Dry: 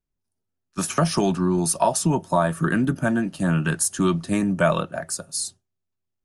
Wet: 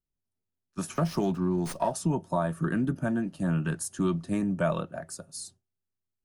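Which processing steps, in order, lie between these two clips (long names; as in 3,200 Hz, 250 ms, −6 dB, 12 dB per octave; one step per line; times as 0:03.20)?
tilt shelving filter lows +3.5 dB
0:00.95–0:01.93: windowed peak hold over 3 samples
level −9 dB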